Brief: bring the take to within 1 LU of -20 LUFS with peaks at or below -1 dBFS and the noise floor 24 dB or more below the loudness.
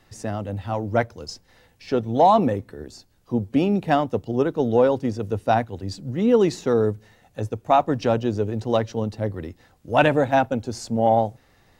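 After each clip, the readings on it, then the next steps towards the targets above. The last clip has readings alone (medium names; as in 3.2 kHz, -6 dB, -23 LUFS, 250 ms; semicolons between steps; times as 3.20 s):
loudness -22.5 LUFS; peak level -2.5 dBFS; loudness target -20.0 LUFS
-> trim +2.5 dB; peak limiter -1 dBFS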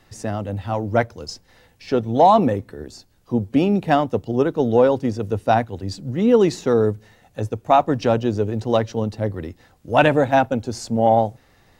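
loudness -20.0 LUFS; peak level -1.0 dBFS; noise floor -57 dBFS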